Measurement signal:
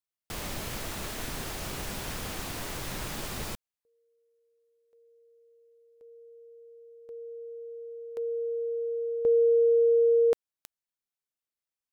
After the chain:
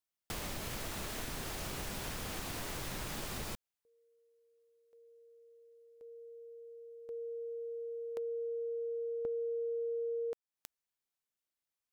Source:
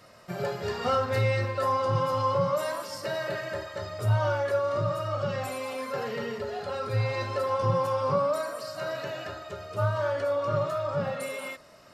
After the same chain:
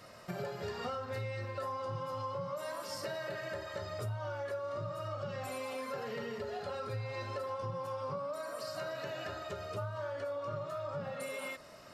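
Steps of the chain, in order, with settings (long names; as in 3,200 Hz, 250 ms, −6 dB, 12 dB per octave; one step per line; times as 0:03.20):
downward compressor 6 to 1, threshold −37 dBFS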